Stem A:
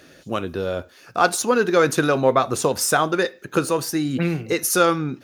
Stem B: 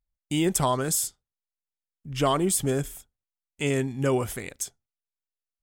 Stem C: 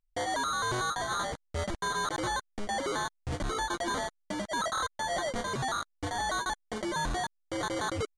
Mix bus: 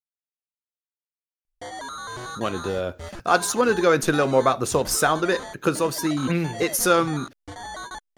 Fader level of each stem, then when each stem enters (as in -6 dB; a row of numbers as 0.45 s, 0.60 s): -1.5 dB, mute, -4.0 dB; 2.10 s, mute, 1.45 s